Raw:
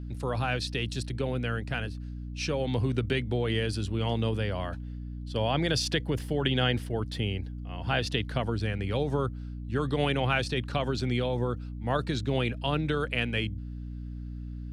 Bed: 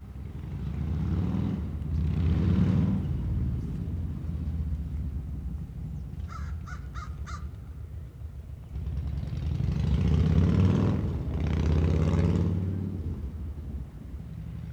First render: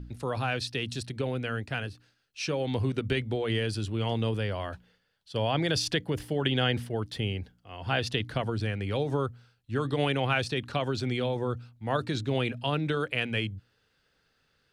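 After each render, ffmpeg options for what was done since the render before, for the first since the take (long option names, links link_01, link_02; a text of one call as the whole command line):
ffmpeg -i in.wav -af "bandreject=frequency=60:width_type=h:width=4,bandreject=frequency=120:width_type=h:width=4,bandreject=frequency=180:width_type=h:width=4,bandreject=frequency=240:width_type=h:width=4,bandreject=frequency=300:width_type=h:width=4" out.wav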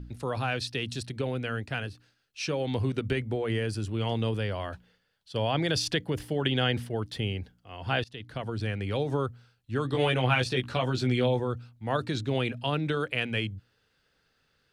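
ffmpeg -i in.wav -filter_complex "[0:a]asettb=1/sr,asplit=3[link_01][link_02][link_03];[link_01]atrim=end=3.114[link_04];[link_02]atrim=start=3.11:end=3.89,asetpts=PTS-STARTPTS,afade=type=in:duration=0.004:curve=qsin,afade=type=out:start_time=0.776:duration=0.004:curve=qsin,equalizer=frequency=3600:width=1.9:gain=-8[link_05];[link_03]atrim=start=3.886[link_06];[link_04][link_05]acrossfade=duration=0.004:curve1=hsin:curve2=qsin[link_07];[link_07][link_06]acrossfade=duration=0.004:curve1=qsin:curve2=hsin,asettb=1/sr,asplit=3[link_08][link_09][link_10];[link_08]atrim=end=9.934[link_11];[link_09]atrim=start=9.93:end=11.4,asetpts=PTS-STARTPTS,afade=type=in:duration=0.004:curve=qsin,afade=type=out:start_time=1.466:duration=0.004:curve=qsin,asplit=2[link_12][link_13];[link_13]adelay=16,volume=-2.5dB[link_14];[link_12][link_14]amix=inputs=2:normalize=0,atrim=end_sample=64827[link_15];[link_10]atrim=start=11.396[link_16];[link_11][link_15]acrossfade=duration=0.004:curve1=hsin:curve2=qsin[link_17];[link_17][link_16]acrossfade=duration=0.004:curve1=qsin:curve2=hsin,asplit=2[link_18][link_19];[link_18]atrim=end=8.04,asetpts=PTS-STARTPTS,afade=type=out:start_time=8.036:duration=0.004:curve=hsin:silence=0.0630957[link_20];[link_19]atrim=start=8.04,asetpts=PTS-STARTPTS,afade=type=in:duration=0.67:silence=0.0630957[link_21];[link_20][link_21]concat=n=2:v=0:a=1" out.wav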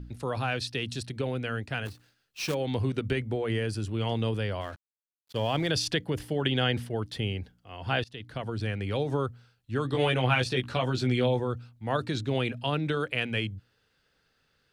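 ffmpeg -i in.wav -filter_complex "[0:a]asplit=3[link_01][link_02][link_03];[link_01]afade=type=out:start_time=1.85:duration=0.02[link_04];[link_02]acrusher=bits=2:mode=log:mix=0:aa=0.000001,afade=type=in:start_time=1.85:duration=0.02,afade=type=out:start_time=2.53:duration=0.02[link_05];[link_03]afade=type=in:start_time=2.53:duration=0.02[link_06];[link_04][link_05][link_06]amix=inputs=3:normalize=0,asettb=1/sr,asplit=3[link_07][link_08][link_09];[link_07]atrim=end=4.614[link_10];[link_08]atrim=start=4.61:end=5.68,asetpts=PTS-STARTPTS,afade=type=in:duration=0.004:curve=qsin,afade=type=out:start_time=1.066:duration=0.004:curve=qsin,aeval=exprs='sgn(val(0))*max(abs(val(0))-0.00422,0)':channel_layout=same[link_11];[link_09]atrim=start=5.676[link_12];[link_10][link_11]acrossfade=duration=0.004:curve1=hsin:curve2=qsin[link_13];[link_13][link_12]acrossfade=duration=0.004:curve1=qsin:curve2=hsin" out.wav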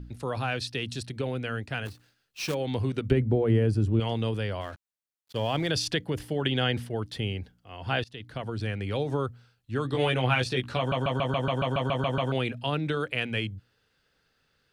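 ffmpeg -i in.wav -filter_complex "[0:a]asettb=1/sr,asplit=3[link_01][link_02][link_03];[link_01]atrim=end=3.114[link_04];[link_02]atrim=start=3.11:end=4,asetpts=PTS-STARTPTS,afade=type=in:duration=0.004:curve=qsin,afade=type=out:start_time=0.886:duration=0.004:curve=qsin,tiltshelf=frequency=970:gain=8.5[link_05];[link_03]atrim=start=3.996[link_06];[link_04][link_05]acrossfade=duration=0.004:curve1=hsin:curve2=qsin[link_07];[link_07][link_06]acrossfade=duration=0.004:curve1=qsin:curve2=hsin,asplit=12[link_08][link_09][link_10][link_11][link_12][link_13][link_14][link_15][link_16][link_17][link_18][link_19];[link_08]atrim=end=10.922[link_20];[link_09]atrim=start=10.778:end=10.922[link_21];[link_10]atrim=start=10.778:end=10.922[link_22];[link_11]atrim=start=10.778:end=10.922[link_23];[link_12]atrim=start=10.778:end=10.922[link_24];[link_13]atrim=start=10.778:end=10.922[link_25];[link_14]atrim=start=10.778:end=10.922[link_26];[link_15]atrim=start=10.778:end=10.922[link_27];[link_16]atrim=start=10.778:end=10.922[link_28];[link_17]atrim=start=10.778:end=10.922[link_29];[link_18]atrim=start=10.778:end=10.922[link_30];[link_19]atrim=start=12.318[link_31];[link_20][link_21]acrossfade=duration=0.004:curve1=hsin:curve2=hsin[link_32];[link_32][link_22]acrossfade=duration=0.004:curve1=hsin:curve2=hsin[link_33];[link_33][link_23]acrossfade=duration=0.004:curve1=hsin:curve2=hsin[link_34];[link_34][link_24]acrossfade=duration=0.004:curve1=hsin:curve2=hsin[link_35];[link_35][link_25]acrossfade=duration=0.004:curve1=hsin:curve2=hsin[link_36];[link_36][link_26]acrossfade=duration=0.004:curve1=hsin:curve2=hsin[link_37];[link_37][link_27]acrossfade=duration=0.004:curve1=hsin:curve2=hsin[link_38];[link_38][link_28]acrossfade=duration=0.004:curve1=hsin:curve2=hsin[link_39];[link_39][link_29]acrossfade=duration=0.004:curve1=hsin:curve2=hsin[link_40];[link_40][link_30]acrossfade=duration=0.004:curve1=hsin:curve2=hsin[link_41];[link_41][link_31]acrossfade=duration=0.004:curve1=hsin:curve2=hsin" out.wav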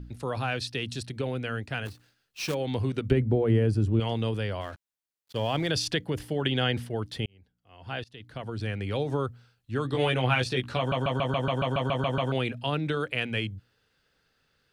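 ffmpeg -i in.wav -filter_complex "[0:a]asplit=2[link_01][link_02];[link_01]atrim=end=7.26,asetpts=PTS-STARTPTS,afade=type=out:start_time=7.256:duration=0.004:curve=hsin[link_03];[link_02]atrim=start=7.26,asetpts=PTS-STARTPTS,afade=type=in:duration=1.51[link_04];[link_03][link_04]concat=n=2:v=0:a=1" out.wav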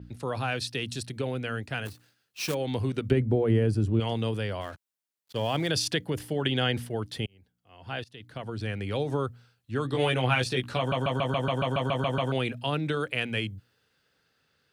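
ffmpeg -i in.wav -af "highpass=79,adynamicequalizer=threshold=0.00447:dfrequency=7000:dqfactor=0.7:tfrequency=7000:tqfactor=0.7:attack=5:release=100:ratio=0.375:range=3:mode=boostabove:tftype=highshelf" out.wav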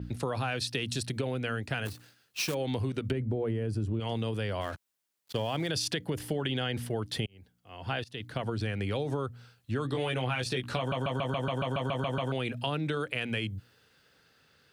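ffmpeg -i in.wav -filter_complex "[0:a]asplit=2[link_01][link_02];[link_02]alimiter=limit=-20.5dB:level=0:latency=1,volume=1dB[link_03];[link_01][link_03]amix=inputs=2:normalize=0,acompressor=threshold=-29dB:ratio=5" out.wav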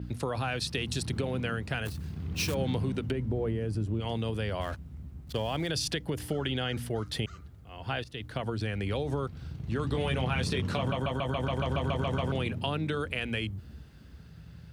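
ffmpeg -i in.wav -i bed.wav -filter_complex "[1:a]volume=-10.5dB[link_01];[0:a][link_01]amix=inputs=2:normalize=0" out.wav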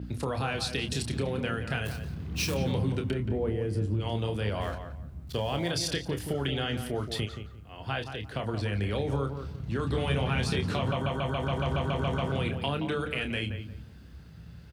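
ffmpeg -i in.wav -filter_complex "[0:a]asplit=2[link_01][link_02];[link_02]adelay=29,volume=-7.5dB[link_03];[link_01][link_03]amix=inputs=2:normalize=0,asplit=2[link_04][link_05];[link_05]adelay=175,lowpass=frequency=1900:poles=1,volume=-8dB,asplit=2[link_06][link_07];[link_07]adelay=175,lowpass=frequency=1900:poles=1,volume=0.25,asplit=2[link_08][link_09];[link_09]adelay=175,lowpass=frequency=1900:poles=1,volume=0.25[link_10];[link_04][link_06][link_08][link_10]amix=inputs=4:normalize=0" out.wav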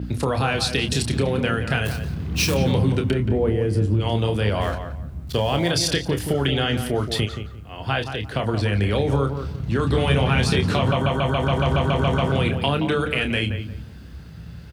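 ffmpeg -i in.wav -af "volume=9dB" out.wav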